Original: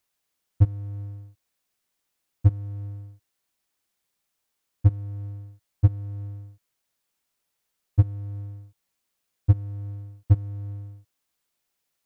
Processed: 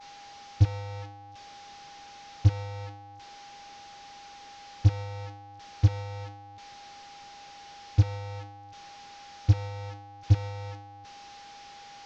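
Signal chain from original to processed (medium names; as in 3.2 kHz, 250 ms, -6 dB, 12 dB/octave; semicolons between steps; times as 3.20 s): one-bit delta coder 32 kbps, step -29.5 dBFS; expander -28 dBFS; whistle 810 Hz -44 dBFS; trim -2.5 dB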